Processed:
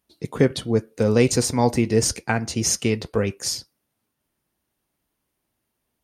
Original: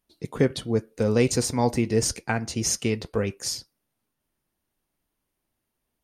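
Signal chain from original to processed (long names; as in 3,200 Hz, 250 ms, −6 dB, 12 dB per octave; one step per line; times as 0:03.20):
high-pass filter 44 Hz
level +3.5 dB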